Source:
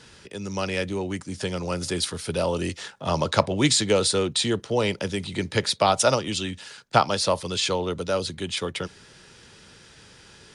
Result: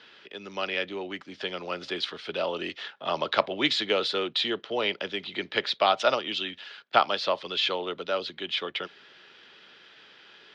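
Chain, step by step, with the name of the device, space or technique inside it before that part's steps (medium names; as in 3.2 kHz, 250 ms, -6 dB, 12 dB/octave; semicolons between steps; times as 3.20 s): phone earpiece (cabinet simulation 420–3800 Hz, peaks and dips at 500 Hz -5 dB, 920 Hz -5 dB, 3.2 kHz +4 dB)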